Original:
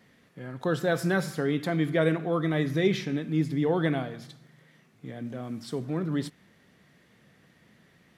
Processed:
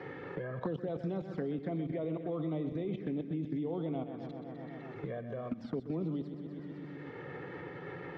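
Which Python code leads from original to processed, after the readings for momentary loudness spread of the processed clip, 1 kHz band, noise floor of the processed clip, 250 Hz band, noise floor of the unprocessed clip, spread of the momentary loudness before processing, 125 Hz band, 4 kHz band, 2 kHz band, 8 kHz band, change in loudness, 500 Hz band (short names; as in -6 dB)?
9 LU, -9.5 dB, -47 dBFS, -7.5 dB, -62 dBFS, 14 LU, -9.0 dB, -18.5 dB, -14.5 dB, under -30 dB, -10.5 dB, -9.0 dB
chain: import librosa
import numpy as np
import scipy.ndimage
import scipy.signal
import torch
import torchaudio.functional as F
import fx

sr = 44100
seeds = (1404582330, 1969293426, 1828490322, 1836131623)

y = scipy.signal.sosfilt(scipy.signal.butter(2, 160.0, 'highpass', fs=sr, output='sos'), x)
y = fx.high_shelf(y, sr, hz=2000.0, db=-9.0)
y = fx.level_steps(y, sr, step_db=17)
y = fx.env_flanger(y, sr, rest_ms=2.4, full_db=-31.0)
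y = fx.air_absorb(y, sr, metres=210.0)
y = fx.echo_feedback(y, sr, ms=126, feedback_pct=60, wet_db=-11.0)
y = fx.band_squash(y, sr, depth_pct=100)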